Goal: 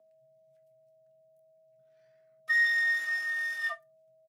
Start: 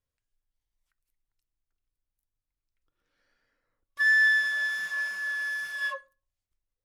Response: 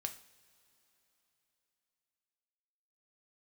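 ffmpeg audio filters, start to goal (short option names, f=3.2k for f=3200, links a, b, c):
-filter_complex "[1:a]atrim=start_sample=2205,afade=t=out:st=0.16:d=0.01,atrim=end_sample=7497[a];[0:a][a]afir=irnorm=-1:irlink=0,aeval=exprs='val(0)+0.000891*sin(2*PI*520*n/s)':c=same,afreqshift=120,atempo=1.6"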